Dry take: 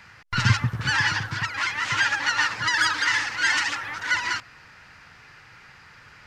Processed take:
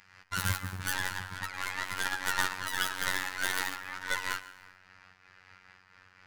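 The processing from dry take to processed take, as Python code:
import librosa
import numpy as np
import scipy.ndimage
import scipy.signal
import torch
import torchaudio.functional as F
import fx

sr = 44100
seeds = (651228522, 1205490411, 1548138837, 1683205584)

y = fx.tracing_dist(x, sr, depth_ms=0.36)
y = fx.low_shelf(y, sr, hz=370.0, db=-3.5)
y = fx.rev_plate(y, sr, seeds[0], rt60_s=0.99, hf_ratio=0.8, predelay_ms=90, drr_db=12.5)
y = fx.robotise(y, sr, hz=92.9)
y = fx.high_shelf(y, sr, hz=4500.0, db=fx.steps((0.0, 3.0), (0.93, -4.0)))
y = fx.am_noise(y, sr, seeds[1], hz=5.7, depth_pct=60)
y = F.gain(torch.from_numpy(y), -3.5).numpy()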